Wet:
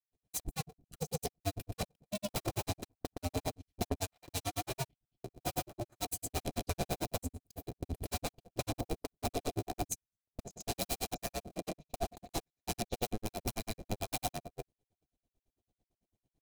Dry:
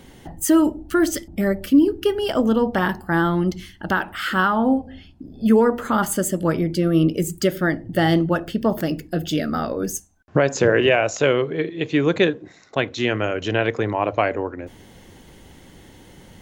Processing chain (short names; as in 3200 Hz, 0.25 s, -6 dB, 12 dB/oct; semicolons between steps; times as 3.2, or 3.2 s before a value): cycle switcher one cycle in 2, inverted; notches 50/100/150/200 Hz; wrapped overs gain 16.5 dB; low shelf 210 Hz +3 dB; compressor 10:1, threshold -30 dBFS, peak gain reduction 11.5 dB; bell 1700 Hz -14.5 dB 2.4 oct; gate -37 dBFS, range -37 dB; small resonant body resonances 710/2400/4000 Hz, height 12 dB, ringing for 45 ms; grains 72 ms, grains 9/s, pitch spread up and down by 0 st; gain +4 dB